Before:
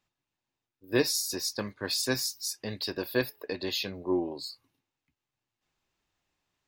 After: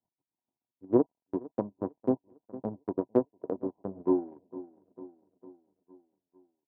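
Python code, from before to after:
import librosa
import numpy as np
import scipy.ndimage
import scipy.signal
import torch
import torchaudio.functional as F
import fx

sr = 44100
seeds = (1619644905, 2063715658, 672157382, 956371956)

y = fx.dead_time(x, sr, dead_ms=0.14)
y = scipy.signal.sosfilt(scipy.signal.cheby1(6, 6, 1000.0, 'lowpass', fs=sr, output='sos'), y)
y = fx.echo_feedback(y, sr, ms=453, feedback_pct=54, wet_db=-15.0)
y = fx.transient(y, sr, attack_db=10, sustain_db=-10)
y = fx.highpass(y, sr, hz=130.0, slope=6)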